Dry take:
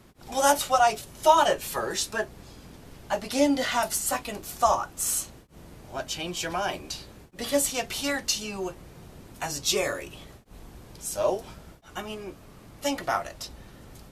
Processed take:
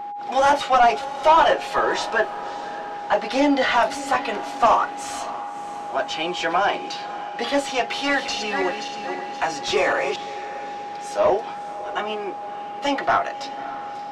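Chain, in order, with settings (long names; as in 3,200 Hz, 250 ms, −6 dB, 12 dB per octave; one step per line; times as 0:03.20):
0:07.83–0:10.16: feedback delay that plays each chunk backwards 263 ms, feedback 54%, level −7.5 dB
high-pass filter 220 Hz 12 dB per octave
notch filter 580 Hz, Q 17
mid-hump overdrive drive 20 dB, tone 4,700 Hz, clips at −6.5 dBFS
steady tone 820 Hz −29 dBFS
head-to-tape spacing loss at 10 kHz 23 dB
feedback delay with all-pass diffusion 598 ms, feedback 49%, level −15 dB
level +1.5 dB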